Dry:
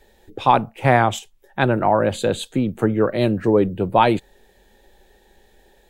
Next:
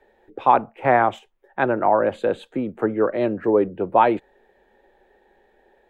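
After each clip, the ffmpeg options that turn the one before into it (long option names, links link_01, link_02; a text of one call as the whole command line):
ffmpeg -i in.wav -filter_complex "[0:a]acrossover=split=260 2300:gain=0.2 1 0.0794[link_01][link_02][link_03];[link_01][link_02][link_03]amix=inputs=3:normalize=0" out.wav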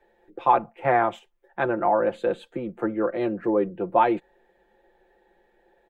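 ffmpeg -i in.wav -af "aecho=1:1:5.8:0.59,volume=-5dB" out.wav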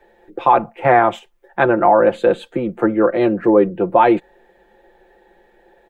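ffmpeg -i in.wav -af "alimiter=level_in=11dB:limit=-1dB:release=50:level=0:latency=1,volume=-1dB" out.wav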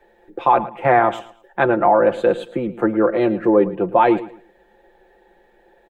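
ffmpeg -i in.wav -af "aecho=1:1:111|222|333:0.158|0.0428|0.0116,volume=-2dB" out.wav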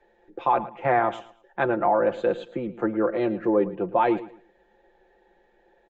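ffmpeg -i in.wav -af "aresample=16000,aresample=44100,volume=-7dB" out.wav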